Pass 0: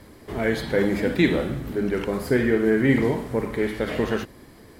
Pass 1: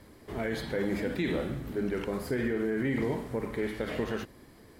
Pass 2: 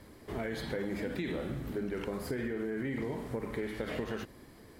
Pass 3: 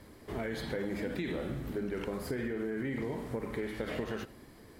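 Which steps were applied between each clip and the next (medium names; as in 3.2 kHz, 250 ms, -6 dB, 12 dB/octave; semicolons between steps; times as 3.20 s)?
peak limiter -14.5 dBFS, peak gain reduction 7.5 dB; trim -6.5 dB
compression, threshold -32 dBFS, peak gain reduction 6.5 dB
reverberation RT60 0.35 s, pre-delay 35 ms, DRR 18 dB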